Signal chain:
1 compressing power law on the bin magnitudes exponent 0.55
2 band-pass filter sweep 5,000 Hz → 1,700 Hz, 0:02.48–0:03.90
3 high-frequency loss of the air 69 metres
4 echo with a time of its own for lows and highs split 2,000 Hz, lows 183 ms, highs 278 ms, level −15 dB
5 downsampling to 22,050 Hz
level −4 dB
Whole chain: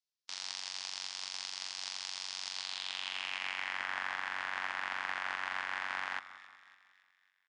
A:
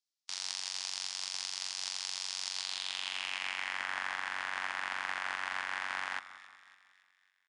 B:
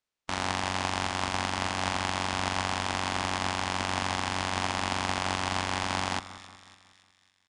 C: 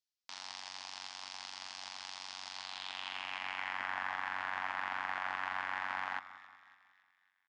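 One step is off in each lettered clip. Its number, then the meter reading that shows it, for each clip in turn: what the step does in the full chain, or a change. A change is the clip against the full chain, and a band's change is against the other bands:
3, 8 kHz band +5.0 dB
2, 250 Hz band +18.0 dB
1, 8 kHz band −8.0 dB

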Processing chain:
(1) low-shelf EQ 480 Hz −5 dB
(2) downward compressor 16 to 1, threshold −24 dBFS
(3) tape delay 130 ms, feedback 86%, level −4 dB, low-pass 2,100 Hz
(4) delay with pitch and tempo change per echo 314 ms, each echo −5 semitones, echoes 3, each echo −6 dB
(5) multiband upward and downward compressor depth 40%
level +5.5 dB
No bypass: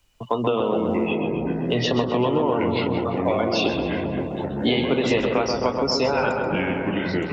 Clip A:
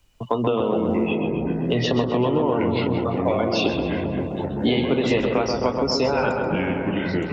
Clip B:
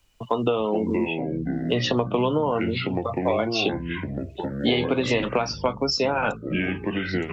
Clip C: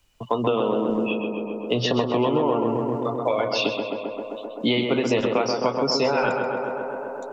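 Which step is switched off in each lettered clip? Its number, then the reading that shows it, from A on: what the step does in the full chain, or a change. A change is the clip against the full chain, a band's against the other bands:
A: 1, 125 Hz band +2.5 dB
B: 3, 500 Hz band −1.5 dB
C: 4, 125 Hz band −4.0 dB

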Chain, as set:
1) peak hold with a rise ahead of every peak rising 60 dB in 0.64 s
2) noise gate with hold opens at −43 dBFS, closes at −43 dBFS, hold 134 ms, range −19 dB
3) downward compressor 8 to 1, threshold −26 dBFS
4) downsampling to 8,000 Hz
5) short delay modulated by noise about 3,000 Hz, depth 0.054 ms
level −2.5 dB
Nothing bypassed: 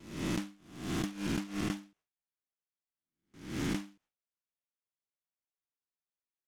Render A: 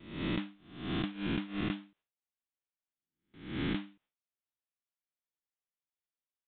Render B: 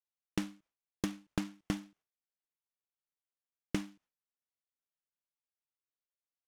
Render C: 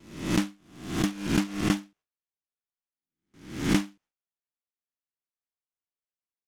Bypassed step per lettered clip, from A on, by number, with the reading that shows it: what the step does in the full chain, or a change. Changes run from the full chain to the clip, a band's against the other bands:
5, 4 kHz band +1.5 dB
1, change in crest factor +7.5 dB
3, average gain reduction 5.0 dB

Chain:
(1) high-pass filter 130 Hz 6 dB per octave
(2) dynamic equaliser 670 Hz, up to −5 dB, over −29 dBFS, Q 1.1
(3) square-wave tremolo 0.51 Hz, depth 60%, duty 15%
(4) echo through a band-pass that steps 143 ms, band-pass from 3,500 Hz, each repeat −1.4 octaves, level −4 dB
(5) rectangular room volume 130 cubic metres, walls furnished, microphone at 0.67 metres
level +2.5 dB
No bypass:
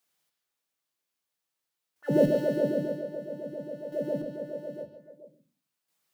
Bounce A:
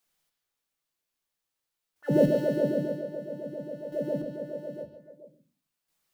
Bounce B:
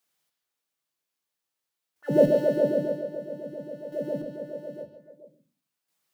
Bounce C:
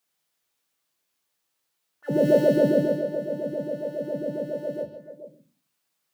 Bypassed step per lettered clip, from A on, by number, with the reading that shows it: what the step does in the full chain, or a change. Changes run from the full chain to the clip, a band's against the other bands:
1, 125 Hz band +2.0 dB
2, 500 Hz band +3.0 dB
3, change in momentary loudness spread +2 LU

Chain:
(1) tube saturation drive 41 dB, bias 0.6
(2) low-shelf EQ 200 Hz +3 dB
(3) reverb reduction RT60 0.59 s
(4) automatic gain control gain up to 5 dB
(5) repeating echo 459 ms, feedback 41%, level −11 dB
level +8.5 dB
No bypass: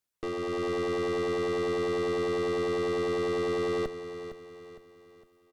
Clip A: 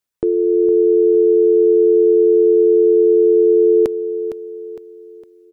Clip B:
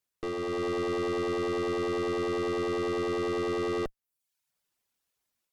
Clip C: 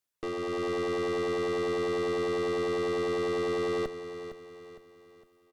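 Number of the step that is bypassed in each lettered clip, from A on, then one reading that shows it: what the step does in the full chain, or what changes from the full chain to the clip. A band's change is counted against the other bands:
1, change in integrated loudness +17.0 LU
5, echo-to-direct ratio −10.0 dB to none audible
2, 125 Hz band −2.0 dB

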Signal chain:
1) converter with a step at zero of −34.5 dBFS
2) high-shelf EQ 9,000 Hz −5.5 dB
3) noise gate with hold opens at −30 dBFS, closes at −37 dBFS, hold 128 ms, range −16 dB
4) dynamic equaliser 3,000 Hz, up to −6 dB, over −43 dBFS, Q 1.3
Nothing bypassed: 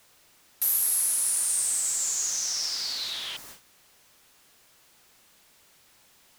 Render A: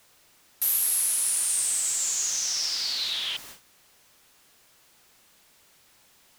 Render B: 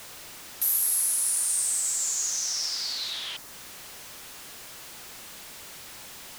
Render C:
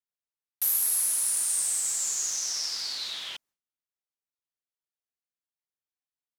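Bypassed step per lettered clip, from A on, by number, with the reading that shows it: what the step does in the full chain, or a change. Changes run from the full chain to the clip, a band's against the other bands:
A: 4, 2 kHz band +2.5 dB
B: 3, change in momentary loudness spread +10 LU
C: 1, distortion level −15 dB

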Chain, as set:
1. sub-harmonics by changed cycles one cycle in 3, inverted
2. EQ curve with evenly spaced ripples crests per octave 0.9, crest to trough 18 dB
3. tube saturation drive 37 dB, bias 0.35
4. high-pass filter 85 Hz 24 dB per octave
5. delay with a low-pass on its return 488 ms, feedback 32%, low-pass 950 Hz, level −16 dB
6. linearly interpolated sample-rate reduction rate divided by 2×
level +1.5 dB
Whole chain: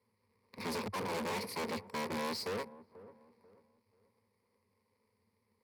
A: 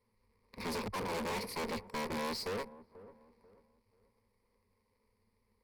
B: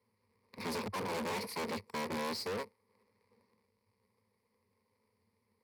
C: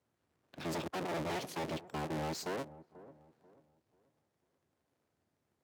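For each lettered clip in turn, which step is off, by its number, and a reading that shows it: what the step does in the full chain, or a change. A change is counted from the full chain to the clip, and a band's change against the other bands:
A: 4, change in crest factor −4.0 dB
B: 5, change in momentary loudness spread −13 LU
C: 2, 125 Hz band +5.5 dB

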